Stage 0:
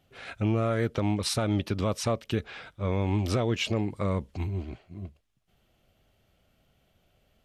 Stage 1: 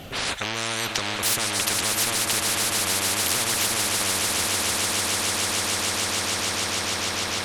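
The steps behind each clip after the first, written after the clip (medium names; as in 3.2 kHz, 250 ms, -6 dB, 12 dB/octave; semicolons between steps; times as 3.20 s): Chebyshev shaper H 5 -26 dB, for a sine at -15.5 dBFS; echo with a slow build-up 149 ms, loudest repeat 8, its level -13 dB; spectrum-flattening compressor 10:1; trim +7 dB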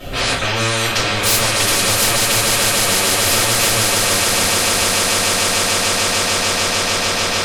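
simulated room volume 46 m³, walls mixed, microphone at 2.7 m; trim -3.5 dB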